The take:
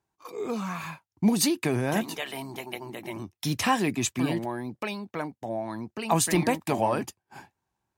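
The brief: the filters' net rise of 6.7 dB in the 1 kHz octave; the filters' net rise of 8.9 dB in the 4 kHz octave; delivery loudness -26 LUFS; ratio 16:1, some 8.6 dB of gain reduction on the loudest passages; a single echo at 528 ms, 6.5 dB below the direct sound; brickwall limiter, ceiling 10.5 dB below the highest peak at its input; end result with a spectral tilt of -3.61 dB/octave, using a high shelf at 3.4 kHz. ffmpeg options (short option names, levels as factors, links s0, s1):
-af "equalizer=f=1000:t=o:g=7.5,highshelf=f=3400:g=6,equalizer=f=4000:t=o:g=6.5,acompressor=threshold=0.0891:ratio=16,alimiter=limit=0.119:level=0:latency=1,aecho=1:1:528:0.473,volume=1.58"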